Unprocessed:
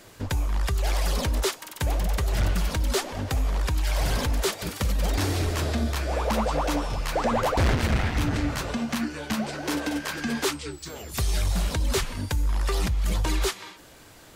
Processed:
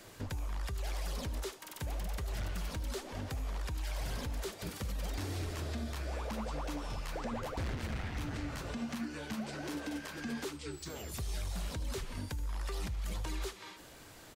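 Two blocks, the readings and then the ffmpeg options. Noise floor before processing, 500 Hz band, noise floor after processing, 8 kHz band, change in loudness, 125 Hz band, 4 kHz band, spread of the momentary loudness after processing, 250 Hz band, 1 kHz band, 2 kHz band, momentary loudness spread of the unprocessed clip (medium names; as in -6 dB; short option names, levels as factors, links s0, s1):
-49 dBFS, -13.5 dB, -53 dBFS, -13.5 dB, -13.0 dB, -12.5 dB, -13.5 dB, 3 LU, -11.5 dB, -14.5 dB, -13.0 dB, 5 LU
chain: -filter_complex "[0:a]alimiter=level_in=1.06:limit=0.0631:level=0:latency=1:release=320,volume=0.944,acrossover=split=460|930[s0][s1][s2];[s0]acompressor=threshold=0.0282:ratio=4[s3];[s1]acompressor=threshold=0.00398:ratio=4[s4];[s2]acompressor=threshold=0.01:ratio=4[s5];[s3][s4][s5]amix=inputs=3:normalize=0,asplit=2[s6][s7];[s7]aecho=0:1:77:0.15[s8];[s6][s8]amix=inputs=2:normalize=0,volume=0.631"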